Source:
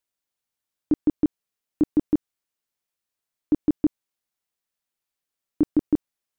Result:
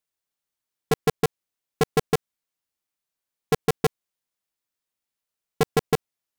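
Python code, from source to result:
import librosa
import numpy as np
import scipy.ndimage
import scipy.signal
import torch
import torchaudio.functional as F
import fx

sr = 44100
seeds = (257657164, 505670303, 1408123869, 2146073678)

y = fx.cycle_switch(x, sr, every=2, mode='inverted')
y = y * 10.0 ** (-1.0 / 20.0)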